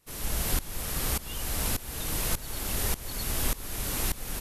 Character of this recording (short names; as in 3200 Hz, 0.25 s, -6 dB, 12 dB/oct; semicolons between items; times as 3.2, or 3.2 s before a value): tremolo saw up 1.7 Hz, depth 90%